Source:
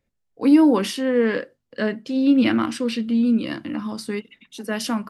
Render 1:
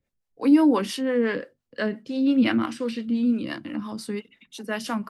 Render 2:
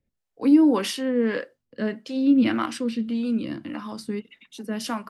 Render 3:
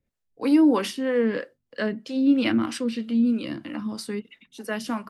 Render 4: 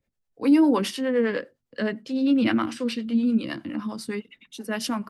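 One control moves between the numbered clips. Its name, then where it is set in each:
two-band tremolo in antiphase, speed: 5.8, 1.7, 3.1, 9.8 Hertz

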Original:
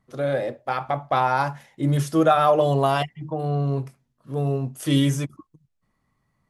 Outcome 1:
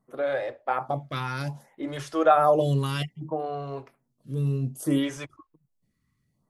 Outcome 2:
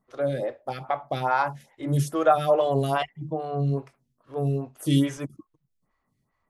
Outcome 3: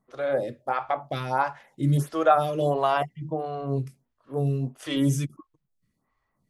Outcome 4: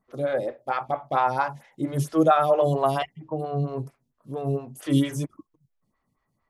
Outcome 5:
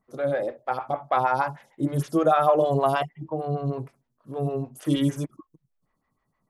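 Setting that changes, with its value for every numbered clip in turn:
phaser with staggered stages, speed: 0.62, 2.4, 1.5, 4.4, 6.5 Hertz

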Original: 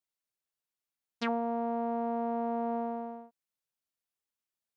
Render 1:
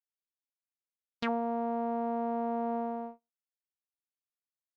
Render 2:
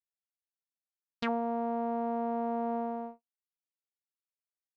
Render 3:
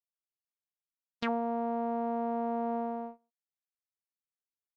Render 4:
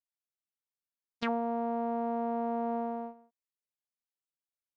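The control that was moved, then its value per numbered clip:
noise gate, range: −42, −59, −28, −12 decibels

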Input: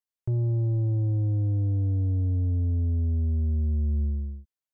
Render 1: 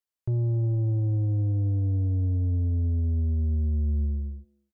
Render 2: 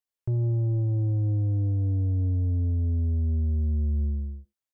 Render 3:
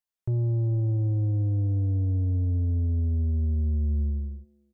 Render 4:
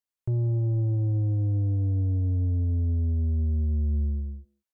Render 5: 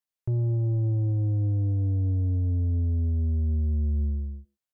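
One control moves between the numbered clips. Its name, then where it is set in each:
far-end echo of a speakerphone, delay time: 270, 80, 400, 180, 120 milliseconds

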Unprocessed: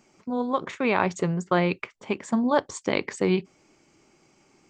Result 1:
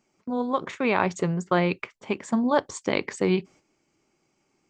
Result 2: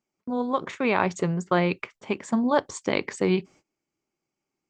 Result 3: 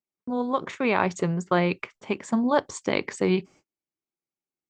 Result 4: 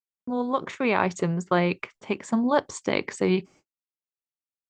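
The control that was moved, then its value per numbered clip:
noise gate, range: −10, −24, −38, −55 decibels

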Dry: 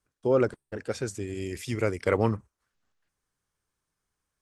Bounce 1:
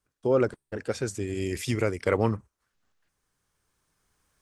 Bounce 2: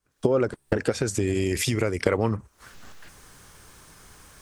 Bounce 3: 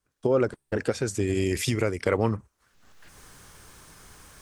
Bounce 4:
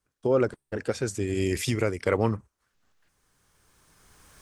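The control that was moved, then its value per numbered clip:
camcorder AGC, rising by: 5.6, 91, 37, 14 dB per second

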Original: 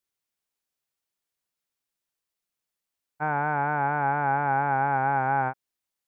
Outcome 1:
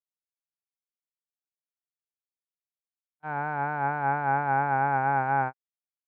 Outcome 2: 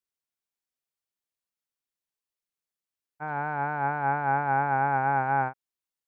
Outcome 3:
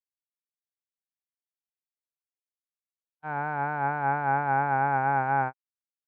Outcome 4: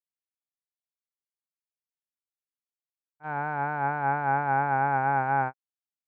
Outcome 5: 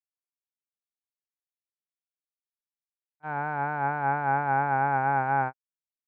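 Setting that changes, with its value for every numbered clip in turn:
noise gate, range: −47, −7, −60, −23, −35 decibels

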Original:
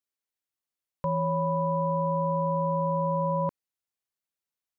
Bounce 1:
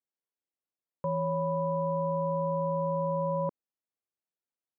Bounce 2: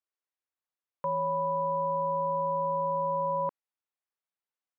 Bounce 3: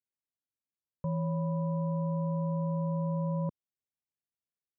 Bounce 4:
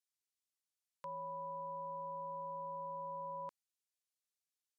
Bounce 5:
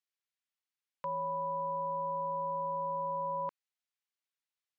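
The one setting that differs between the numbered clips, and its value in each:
resonant band-pass, frequency: 380, 1,000, 130, 7,000, 2,600 Hertz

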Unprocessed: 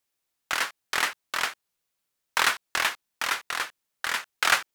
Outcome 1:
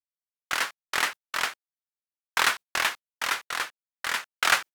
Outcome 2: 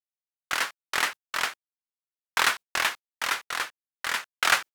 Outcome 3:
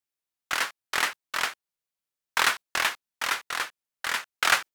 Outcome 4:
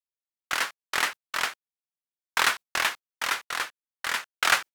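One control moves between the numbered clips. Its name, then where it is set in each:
noise gate, range: −35, −55, −10, −23 decibels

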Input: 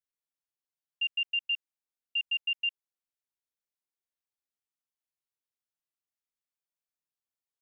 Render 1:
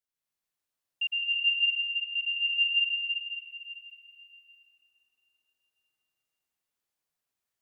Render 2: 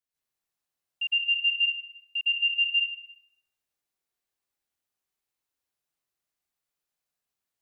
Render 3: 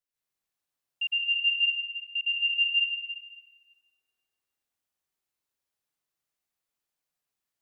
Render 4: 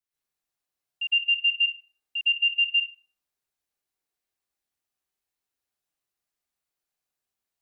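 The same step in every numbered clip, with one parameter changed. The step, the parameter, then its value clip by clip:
dense smooth reverb, RT60: 5.2, 1.1, 2.3, 0.51 seconds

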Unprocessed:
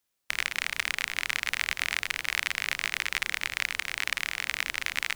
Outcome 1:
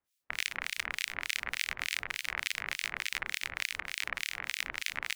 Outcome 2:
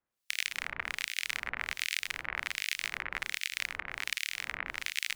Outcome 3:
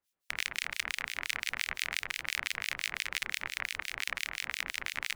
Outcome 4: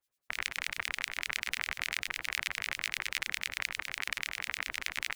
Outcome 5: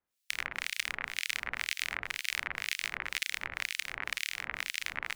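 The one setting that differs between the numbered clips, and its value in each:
two-band tremolo in antiphase, speed: 3.4, 1.3, 5.8, 10, 2 Hertz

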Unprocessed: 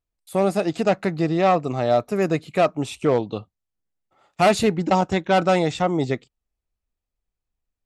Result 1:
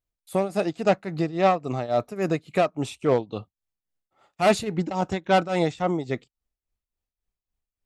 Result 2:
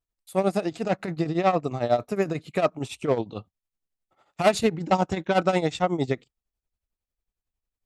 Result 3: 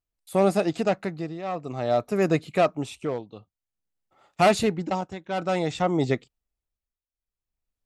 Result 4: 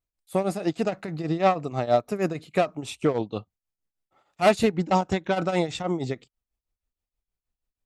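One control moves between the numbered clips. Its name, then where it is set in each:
shaped tremolo, speed: 3.6, 11, 0.53, 6.3 Hertz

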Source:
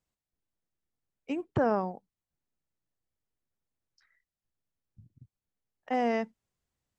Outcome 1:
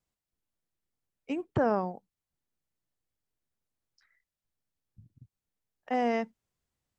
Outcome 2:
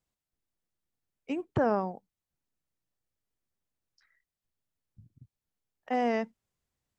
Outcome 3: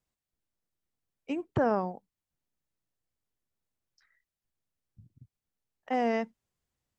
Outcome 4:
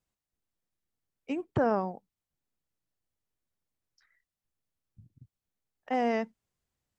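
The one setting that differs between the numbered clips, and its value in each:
pitch vibrato, speed: 1.5, 4.5, 2.6, 6.6 Hertz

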